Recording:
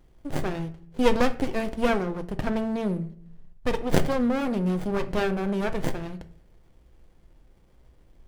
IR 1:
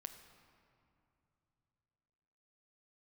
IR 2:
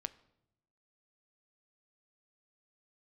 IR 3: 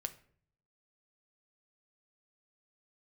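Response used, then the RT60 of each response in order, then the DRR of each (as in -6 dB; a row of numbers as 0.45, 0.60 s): 3; 2.9, 0.80, 0.55 s; 7.0, 11.5, 8.5 dB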